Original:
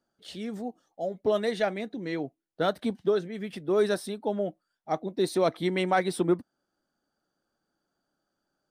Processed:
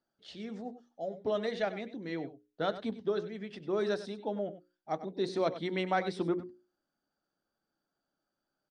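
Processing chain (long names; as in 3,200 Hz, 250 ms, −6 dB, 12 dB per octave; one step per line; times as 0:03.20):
low-pass filter 6,300 Hz 24 dB per octave
mains-hum notches 60/120/180/240/300/360/420/480/540 Hz
single-tap delay 97 ms −14 dB
level −5.5 dB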